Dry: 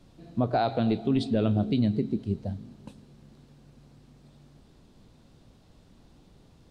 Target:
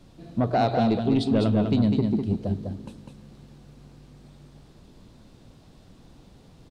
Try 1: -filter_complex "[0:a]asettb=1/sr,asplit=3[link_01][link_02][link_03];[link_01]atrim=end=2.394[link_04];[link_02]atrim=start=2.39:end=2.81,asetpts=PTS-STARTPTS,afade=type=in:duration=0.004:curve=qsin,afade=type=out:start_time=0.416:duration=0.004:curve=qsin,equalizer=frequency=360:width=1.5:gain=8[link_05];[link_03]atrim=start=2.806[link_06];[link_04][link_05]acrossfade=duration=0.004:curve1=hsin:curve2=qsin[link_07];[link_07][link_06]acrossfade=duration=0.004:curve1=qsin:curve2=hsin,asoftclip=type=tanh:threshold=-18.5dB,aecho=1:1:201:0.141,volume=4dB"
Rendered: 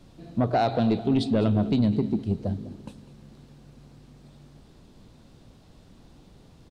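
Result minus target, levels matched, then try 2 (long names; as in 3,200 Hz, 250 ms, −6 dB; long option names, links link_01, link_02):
echo-to-direct −12 dB
-filter_complex "[0:a]asettb=1/sr,asplit=3[link_01][link_02][link_03];[link_01]atrim=end=2.394[link_04];[link_02]atrim=start=2.39:end=2.81,asetpts=PTS-STARTPTS,afade=type=in:duration=0.004:curve=qsin,afade=type=out:start_time=0.416:duration=0.004:curve=qsin,equalizer=frequency=360:width=1.5:gain=8[link_05];[link_03]atrim=start=2.806[link_06];[link_04][link_05]acrossfade=duration=0.004:curve1=hsin:curve2=qsin[link_07];[link_07][link_06]acrossfade=duration=0.004:curve1=qsin:curve2=hsin,asoftclip=type=tanh:threshold=-18.5dB,aecho=1:1:201:0.562,volume=4dB"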